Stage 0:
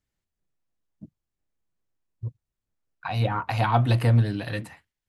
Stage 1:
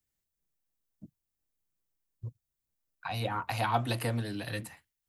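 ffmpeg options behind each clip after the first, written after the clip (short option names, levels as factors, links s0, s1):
-filter_complex "[0:a]aemphasis=mode=production:type=50kf,acrossover=split=200|300|1600[s0][s1][s2][s3];[s0]acompressor=threshold=0.0316:ratio=6[s4];[s4][s1][s2][s3]amix=inputs=4:normalize=0,volume=0.501"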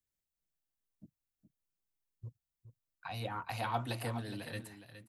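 -af "aecho=1:1:415:0.282,volume=0.473"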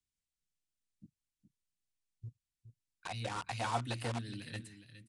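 -filter_complex "[0:a]acrossover=split=380|1600[s0][s1][s2];[s1]acrusher=bits=6:mix=0:aa=0.000001[s3];[s0][s3][s2]amix=inputs=3:normalize=0,aresample=22050,aresample=44100"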